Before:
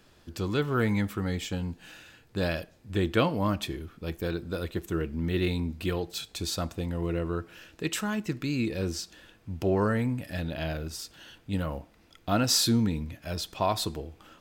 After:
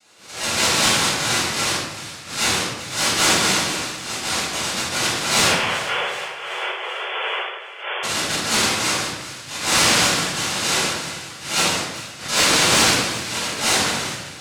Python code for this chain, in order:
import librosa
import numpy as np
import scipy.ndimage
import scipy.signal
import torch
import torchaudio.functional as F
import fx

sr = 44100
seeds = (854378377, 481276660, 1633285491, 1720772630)

y = fx.chorus_voices(x, sr, voices=6, hz=0.39, base_ms=30, depth_ms=4.0, mix_pct=50)
y = fx.noise_vocoder(y, sr, seeds[0], bands=1)
y = fx.vibrato(y, sr, rate_hz=1.1, depth_cents=7.4)
y = 10.0 ** (-19.0 / 20.0) * np.tanh(y / 10.0 ** (-19.0 / 20.0))
y = fx.brickwall_bandpass(y, sr, low_hz=360.0, high_hz=3500.0, at=(5.46, 8.03))
y = fx.echo_split(y, sr, split_hz=1200.0, low_ms=162, high_ms=382, feedback_pct=52, wet_db=-15.0)
y = fx.room_shoebox(y, sr, seeds[1], volume_m3=410.0, walls='mixed', distance_m=7.3)
y = fx.pre_swell(y, sr, db_per_s=110.0)
y = y * librosa.db_to_amplitude(-1.5)